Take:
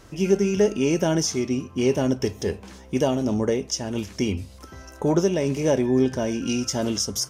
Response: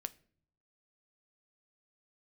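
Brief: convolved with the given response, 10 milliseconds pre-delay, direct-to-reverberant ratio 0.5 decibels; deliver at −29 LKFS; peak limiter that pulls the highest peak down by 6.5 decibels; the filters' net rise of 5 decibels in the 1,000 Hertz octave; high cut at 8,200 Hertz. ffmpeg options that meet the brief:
-filter_complex "[0:a]lowpass=8200,equalizer=frequency=1000:width_type=o:gain=6.5,alimiter=limit=-13.5dB:level=0:latency=1,asplit=2[link_01][link_02];[1:a]atrim=start_sample=2205,adelay=10[link_03];[link_02][link_03]afir=irnorm=-1:irlink=0,volume=2dB[link_04];[link_01][link_04]amix=inputs=2:normalize=0,volume=-7dB"

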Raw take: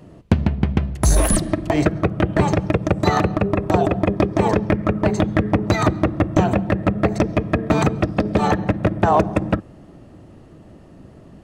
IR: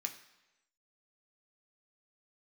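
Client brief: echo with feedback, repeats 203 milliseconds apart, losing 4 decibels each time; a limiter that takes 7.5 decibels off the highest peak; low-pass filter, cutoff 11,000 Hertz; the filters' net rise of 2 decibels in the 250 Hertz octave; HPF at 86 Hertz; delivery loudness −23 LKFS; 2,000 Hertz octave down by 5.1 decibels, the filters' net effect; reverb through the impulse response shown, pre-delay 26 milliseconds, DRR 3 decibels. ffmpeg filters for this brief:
-filter_complex "[0:a]highpass=86,lowpass=11000,equalizer=frequency=250:width_type=o:gain=3,equalizer=frequency=2000:width_type=o:gain=-6.5,alimiter=limit=-8.5dB:level=0:latency=1,aecho=1:1:203|406|609|812|1015|1218|1421|1624|1827:0.631|0.398|0.25|0.158|0.0994|0.0626|0.0394|0.0249|0.0157,asplit=2[link_01][link_02];[1:a]atrim=start_sample=2205,adelay=26[link_03];[link_02][link_03]afir=irnorm=-1:irlink=0,volume=-2dB[link_04];[link_01][link_04]amix=inputs=2:normalize=0,volume=-4.5dB"

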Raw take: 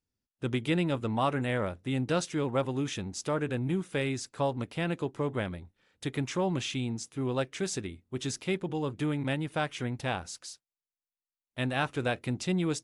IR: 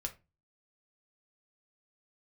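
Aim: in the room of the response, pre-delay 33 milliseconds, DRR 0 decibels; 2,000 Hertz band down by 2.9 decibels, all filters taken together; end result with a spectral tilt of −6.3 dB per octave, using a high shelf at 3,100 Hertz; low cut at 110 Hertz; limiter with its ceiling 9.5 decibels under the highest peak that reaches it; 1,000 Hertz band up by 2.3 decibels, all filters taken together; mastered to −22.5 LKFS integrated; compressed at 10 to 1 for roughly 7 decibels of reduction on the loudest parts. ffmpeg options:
-filter_complex "[0:a]highpass=110,equalizer=frequency=1000:width_type=o:gain=4.5,equalizer=frequency=2000:width_type=o:gain=-3,highshelf=frequency=3100:gain=-7,acompressor=threshold=-29dB:ratio=10,alimiter=level_in=3dB:limit=-24dB:level=0:latency=1,volume=-3dB,asplit=2[link_01][link_02];[1:a]atrim=start_sample=2205,adelay=33[link_03];[link_02][link_03]afir=irnorm=-1:irlink=0,volume=1dB[link_04];[link_01][link_04]amix=inputs=2:normalize=0,volume=11.5dB"

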